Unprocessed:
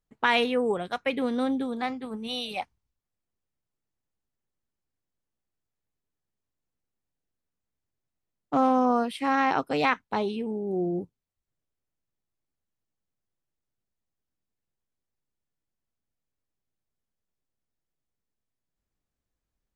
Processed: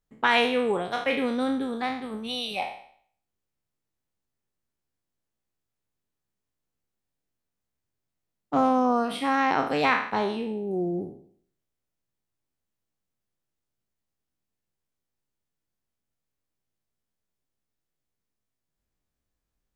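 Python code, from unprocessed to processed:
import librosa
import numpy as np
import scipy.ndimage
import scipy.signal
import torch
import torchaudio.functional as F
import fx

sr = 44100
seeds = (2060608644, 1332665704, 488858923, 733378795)

y = fx.spec_trails(x, sr, decay_s=0.57)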